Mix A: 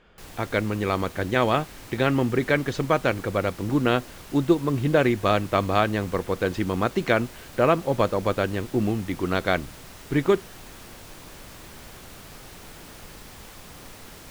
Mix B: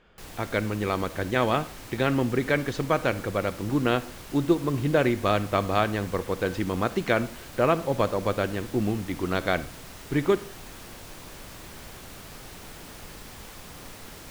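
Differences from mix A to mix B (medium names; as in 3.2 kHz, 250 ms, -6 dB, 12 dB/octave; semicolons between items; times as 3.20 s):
speech -3.0 dB; reverb: on, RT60 0.40 s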